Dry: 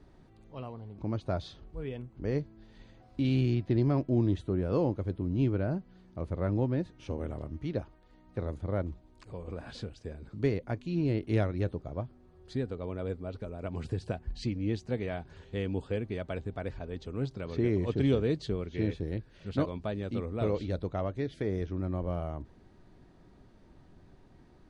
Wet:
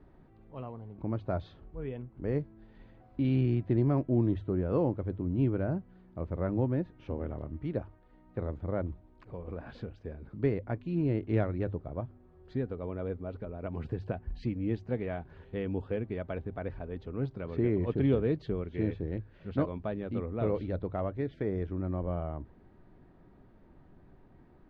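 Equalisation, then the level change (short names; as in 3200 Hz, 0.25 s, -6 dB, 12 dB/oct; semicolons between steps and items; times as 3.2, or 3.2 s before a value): LPF 2100 Hz 12 dB/oct; notches 50/100 Hz; 0.0 dB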